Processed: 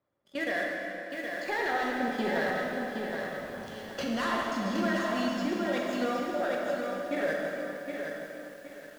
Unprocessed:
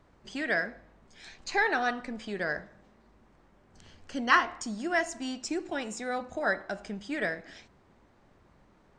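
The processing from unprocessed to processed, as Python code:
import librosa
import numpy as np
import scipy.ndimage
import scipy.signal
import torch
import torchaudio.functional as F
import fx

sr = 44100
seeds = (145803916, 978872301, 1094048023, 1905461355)

p1 = fx.doppler_pass(x, sr, speed_mps=13, closest_m=3.4, pass_at_s=3.44)
p2 = fx.bandpass_edges(p1, sr, low_hz=110.0, high_hz=4500.0)
p3 = fx.notch(p2, sr, hz=2600.0, q=27.0)
p4 = fx.over_compress(p3, sr, threshold_db=-45.0, ratio=-1.0)
p5 = p3 + F.gain(torch.from_numpy(p4), 2.0).numpy()
p6 = fx.leveller(p5, sr, passes=3)
p7 = fx.small_body(p6, sr, hz=(560.0, 3400.0), ring_ms=100, db=15)
p8 = p7 + fx.echo_single(p7, sr, ms=138, db=-21.5, dry=0)
p9 = fx.level_steps(p8, sr, step_db=17)
p10 = fx.rev_plate(p9, sr, seeds[0], rt60_s=2.9, hf_ratio=0.8, predelay_ms=0, drr_db=-2.0)
p11 = fx.echo_crushed(p10, sr, ms=768, feedback_pct=35, bits=9, wet_db=-5)
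y = F.gain(torch.from_numpy(p11), 1.5).numpy()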